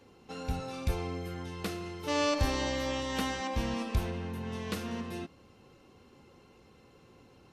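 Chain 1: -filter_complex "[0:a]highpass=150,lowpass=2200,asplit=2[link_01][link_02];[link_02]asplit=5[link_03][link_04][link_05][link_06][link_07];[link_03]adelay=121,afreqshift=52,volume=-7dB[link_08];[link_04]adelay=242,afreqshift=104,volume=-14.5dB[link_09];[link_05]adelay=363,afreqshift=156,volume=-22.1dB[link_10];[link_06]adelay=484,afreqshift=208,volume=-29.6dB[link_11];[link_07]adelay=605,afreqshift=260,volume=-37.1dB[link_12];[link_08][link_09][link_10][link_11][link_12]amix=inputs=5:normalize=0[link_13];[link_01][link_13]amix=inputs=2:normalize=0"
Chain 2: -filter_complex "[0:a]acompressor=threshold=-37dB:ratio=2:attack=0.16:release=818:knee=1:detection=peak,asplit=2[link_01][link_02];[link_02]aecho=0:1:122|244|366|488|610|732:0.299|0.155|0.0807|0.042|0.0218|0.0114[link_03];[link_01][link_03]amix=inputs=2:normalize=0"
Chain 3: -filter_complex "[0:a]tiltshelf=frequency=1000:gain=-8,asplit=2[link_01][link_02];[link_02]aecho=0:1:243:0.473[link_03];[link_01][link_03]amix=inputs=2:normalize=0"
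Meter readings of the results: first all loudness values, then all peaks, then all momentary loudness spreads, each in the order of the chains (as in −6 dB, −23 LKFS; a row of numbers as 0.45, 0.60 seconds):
−35.5, −41.5, −32.5 LKFS; −18.0, −25.5, −15.0 dBFS; 10, 19, 14 LU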